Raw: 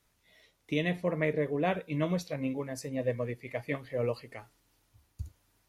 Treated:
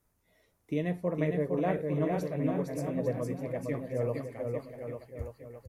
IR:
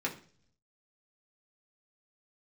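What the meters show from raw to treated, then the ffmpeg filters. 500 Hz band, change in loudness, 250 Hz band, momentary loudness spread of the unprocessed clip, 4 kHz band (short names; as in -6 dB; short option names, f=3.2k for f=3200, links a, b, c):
+1.0 dB, 0.0 dB, +2.0 dB, 16 LU, under -10 dB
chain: -filter_complex "[0:a]equalizer=f=3.4k:w=0.63:g=-13.5,asplit=2[a][b];[b]aecho=0:1:460|851|1183|1466|1706:0.631|0.398|0.251|0.158|0.1[c];[a][c]amix=inputs=2:normalize=0"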